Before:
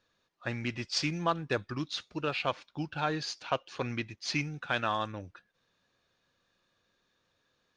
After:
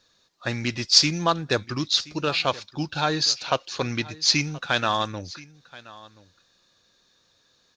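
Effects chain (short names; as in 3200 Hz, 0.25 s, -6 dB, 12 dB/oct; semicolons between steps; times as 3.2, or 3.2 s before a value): band shelf 5200 Hz +9.5 dB 1.2 oct; echo 1.027 s -20.5 dB; gain +7 dB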